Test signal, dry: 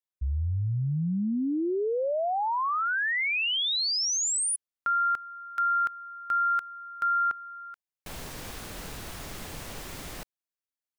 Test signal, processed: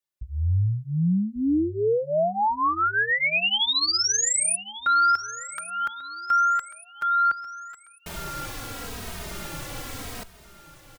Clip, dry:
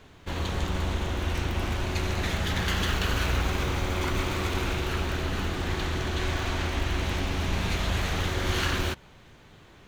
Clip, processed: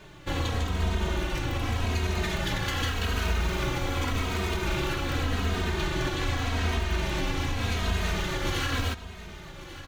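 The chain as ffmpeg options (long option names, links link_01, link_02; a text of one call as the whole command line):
ffmpeg -i in.wav -filter_complex "[0:a]alimiter=limit=-22.5dB:level=0:latency=1:release=216,aecho=1:1:1142|2284|3426|4568:0.168|0.0672|0.0269|0.0107,asplit=2[link_01][link_02];[link_02]adelay=2.9,afreqshift=-0.85[link_03];[link_01][link_03]amix=inputs=2:normalize=1,volume=7dB" out.wav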